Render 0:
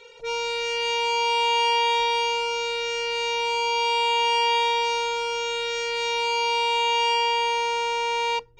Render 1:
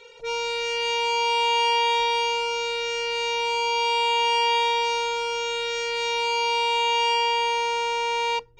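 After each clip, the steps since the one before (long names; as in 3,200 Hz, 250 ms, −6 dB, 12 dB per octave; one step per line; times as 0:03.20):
no processing that can be heard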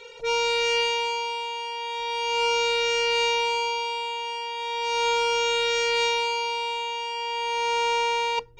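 compressor whose output falls as the input rises −26 dBFS, ratio −0.5
level +1 dB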